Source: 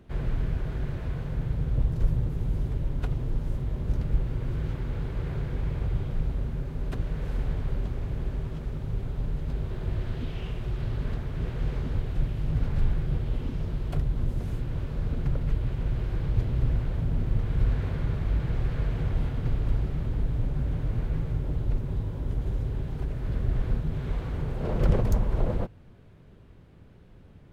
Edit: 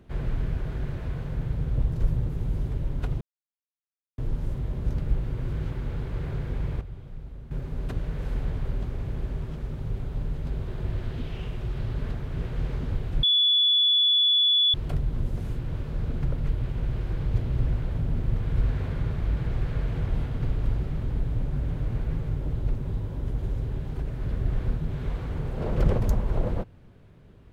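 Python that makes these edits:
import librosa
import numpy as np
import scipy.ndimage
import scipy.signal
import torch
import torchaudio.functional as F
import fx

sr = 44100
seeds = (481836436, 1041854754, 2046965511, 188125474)

y = fx.edit(x, sr, fx.insert_silence(at_s=3.21, length_s=0.97),
    fx.clip_gain(start_s=5.84, length_s=0.7, db=-11.5),
    fx.bleep(start_s=12.26, length_s=1.51, hz=3430.0, db=-17.5), tone=tone)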